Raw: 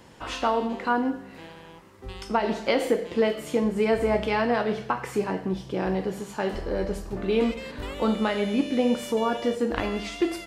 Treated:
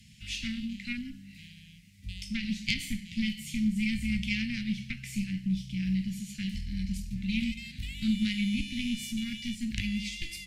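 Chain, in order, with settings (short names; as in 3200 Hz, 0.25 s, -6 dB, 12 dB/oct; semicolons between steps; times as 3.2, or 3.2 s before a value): added harmonics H 4 -11 dB, 6 -27 dB, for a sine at -8 dBFS; Chebyshev band-stop 210–2200 Hz, order 4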